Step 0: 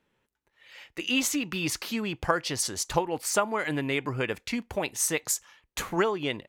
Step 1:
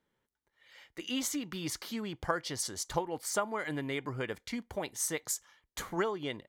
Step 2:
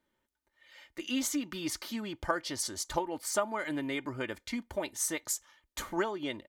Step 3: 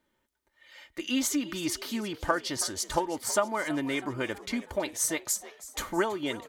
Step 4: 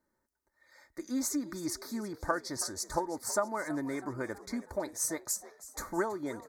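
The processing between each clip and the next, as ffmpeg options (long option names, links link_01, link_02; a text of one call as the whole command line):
ffmpeg -i in.wav -af "bandreject=frequency=2600:width=5.7,volume=-6.5dB" out.wav
ffmpeg -i in.wav -af "aecho=1:1:3.3:0.51" out.wav
ffmpeg -i in.wav -filter_complex "[0:a]asplit=6[link_01][link_02][link_03][link_04][link_05][link_06];[link_02]adelay=324,afreqshift=65,volume=-16.5dB[link_07];[link_03]adelay=648,afreqshift=130,volume=-21.9dB[link_08];[link_04]adelay=972,afreqshift=195,volume=-27.2dB[link_09];[link_05]adelay=1296,afreqshift=260,volume=-32.6dB[link_10];[link_06]adelay=1620,afreqshift=325,volume=-37.9dB[link_11];[link_01][link_07][link_08][link_09][link_10][link_11]amix=inputs=6:normalize=0,volume=4dB" out.wav
ffmpeg -i in.wav -af "asuperstop=centerf=2900:order=4:qfactor=1.1,volume=-4dB" out.wav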